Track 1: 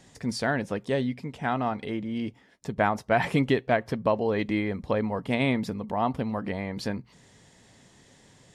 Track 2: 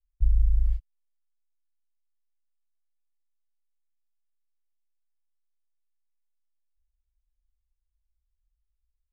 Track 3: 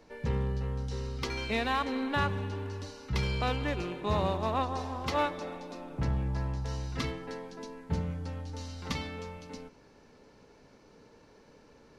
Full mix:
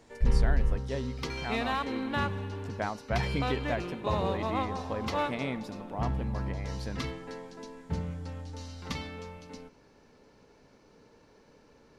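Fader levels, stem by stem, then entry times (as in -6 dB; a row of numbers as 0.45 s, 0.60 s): -9.5 dB, -3.5 dB, -1.5 dB; 0.00 s, 0.00 s, 0.00 s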